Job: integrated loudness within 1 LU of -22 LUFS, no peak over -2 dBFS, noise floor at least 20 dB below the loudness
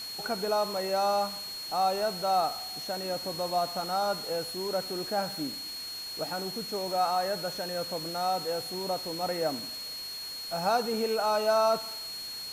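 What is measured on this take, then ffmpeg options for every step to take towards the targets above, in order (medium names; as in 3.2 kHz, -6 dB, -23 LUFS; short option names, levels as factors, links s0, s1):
steady tone 4.3 kHz; tone level -37 dBFS; noise floor -39 dBFS; noise floor target -51 dBFS; loudness -30.5 LUFS; peak level -15.0 dBFS; loudness target -22.0 LUFS
-> -af "bandreject=f=4300:w=30"
-af "afftdn=nr=12:nf=-39"
-af "volume=2.66"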